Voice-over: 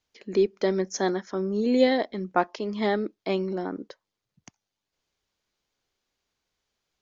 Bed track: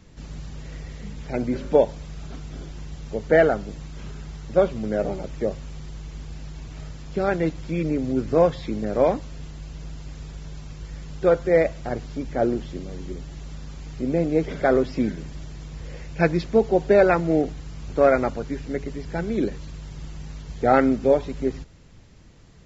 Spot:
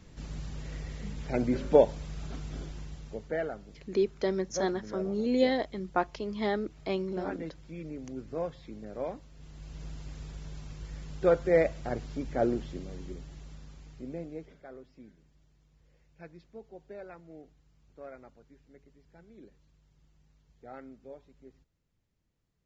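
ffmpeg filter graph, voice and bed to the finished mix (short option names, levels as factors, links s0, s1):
-filter_complex "[0:a]adelay=3600,volume=0.562[s0];[1:a]volume=2.51,afade=t=out:st=2.57:d=0.78:silence=0.211349,afade=t=in:st=9.34:d=0.5:silence=0.281838,afade=t=out:st=12.52:d=2.1:silence=0.0668344[s1];[s0][s1]amix=inputs=2:normalize=0"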